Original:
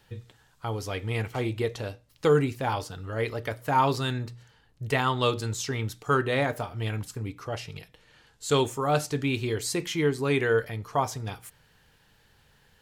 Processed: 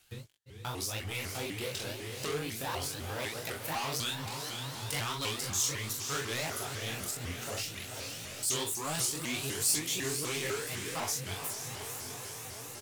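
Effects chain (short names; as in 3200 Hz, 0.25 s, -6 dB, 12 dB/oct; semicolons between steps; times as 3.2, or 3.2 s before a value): sample leveller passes 3; pre-emphasis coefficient 0.9; expander -40 dBFS; low shelf 400 Hz +3 dB; doubler 41 ms -3.5 dB; diffused feedback echo 0.466 s, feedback 52%, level -9 dB; upward compressor, threshold -25 dBFS; chorus 2.9 Hz, delay 18.5 ms, depth 5.6 ms; shaped vibrato saw up 4 Hz, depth 250 cents; gain -3 dB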